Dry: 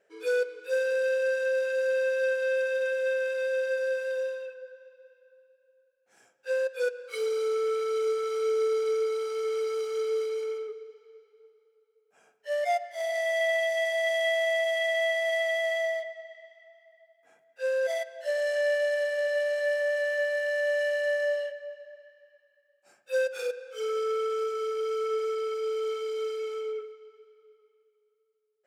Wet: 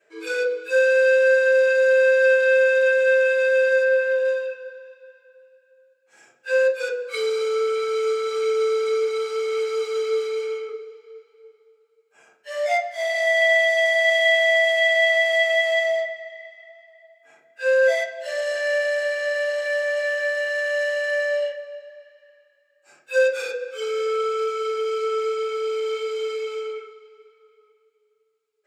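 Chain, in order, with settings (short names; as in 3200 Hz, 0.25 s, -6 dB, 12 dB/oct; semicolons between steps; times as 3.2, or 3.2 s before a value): 3.83–4.25 tone controls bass 0 dB, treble -9 dB; reverb RT60 0.40 s, pre-delay 3 ms, DRR -6.5 dB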